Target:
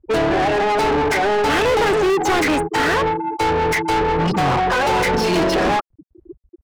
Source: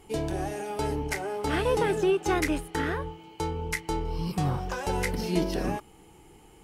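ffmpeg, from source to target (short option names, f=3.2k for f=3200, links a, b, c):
-filter_complex "[0:a]asettb=1/sr,asplit=3[a][b][c];[a]atrim=end=1.094[d];[b]atrim=start=1.09:end=2.72,asetpts=PTS-STARTPTS,afade=t=in:d=0.004:c=qsin,afade=t=out:st=1.626:d=0.004:c=qsin,agate=range=-33dB:threshold=-33dB:ratio=3:detection=peak[e];[c]atrim=start=2.716[f];[d][e]acrossfade=d=0.004:c1=hsin:c2=qsin[g];[g][f]acrossfade=d=0.004:c1=qsin:c2=hsin,afftfilt=real='re*gte(hypot(re,im),0.0178)':imag='im*gte(hypot(re,im),0.0178)':win_size=1024:overlap=0.75,asplit=2[h][i];[i]highpass=f=720:p=1,volume=37dB,asoftclip=type=tanh:threshold=-13dB[j];[h][j]amix=inputs=2:normalize=0,lowpass=f=3.2k:p=1,volume=-6dB,volume=2.5dB"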